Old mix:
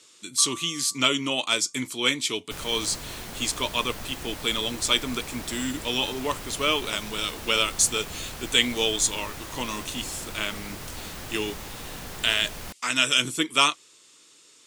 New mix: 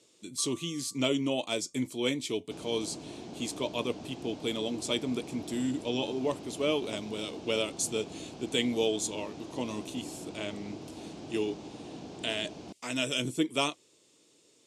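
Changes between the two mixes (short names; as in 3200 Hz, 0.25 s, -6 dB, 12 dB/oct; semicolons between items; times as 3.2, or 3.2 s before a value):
second sound: add speaker cabinet 170–6500 Hz, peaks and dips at 310 Hz +7 dB, 540 Hz -6 dB, 1900 Hz -9 dB; master: add EQ curve 660 Hz 0 dB, 1300 Hz -16 dB, 2300 Hz -11 dB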